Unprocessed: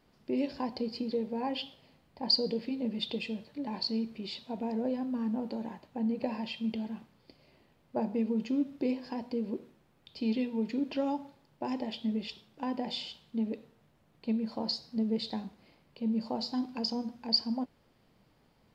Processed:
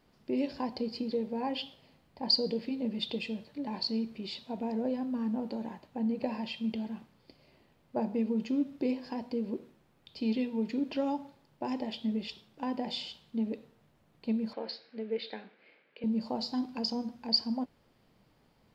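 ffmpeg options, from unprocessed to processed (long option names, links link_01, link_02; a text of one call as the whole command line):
ffmpeg -i in.wav -filter_complex "[0:a]asettb=1/sr,asplit=3[link_01][link_02][link_03];[link_01]atrim=end=14.534[link_04];[link_02]atrim=start=14.53:end=16.04,asetpts=PTS-STARTPTS,afade=type=in:duration=0.004:curve=qsin,afade=type=out:start_time=1.506:duration=0.004:curve=qsin,highpass=420,equalizer=frequency=460:width_type=q:width=4:gain=6,equalizer=frequency=720:width_type=q:width=4:gain=-4,equalizer=frequency=1000:width_type=q:width=4:gain=-7,equalizer=frequency=1600:width_type=q:width=4:gain=8,equalizer=frequency=2300:width_type=q:width=4:gain=8,lowpass=frequency=3700:width=0.5412,lowpass=frequency=3700:width=1.3066[link_05];[link_03]atrim=start=16.036[link_06];[link_04][link_05]acrossfade=duration=0.004:curve1=hsin:curve2=qsin[link_07];[link_07][link_06]acrossfade=duration=0.004:curve1=qsin:curve2=hsin" out.wav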